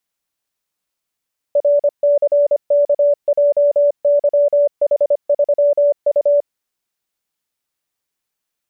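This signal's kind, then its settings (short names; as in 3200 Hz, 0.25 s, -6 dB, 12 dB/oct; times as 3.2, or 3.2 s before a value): Morse "RCKJYH3U" 25 wpm 578 Hz -9.5 dBFS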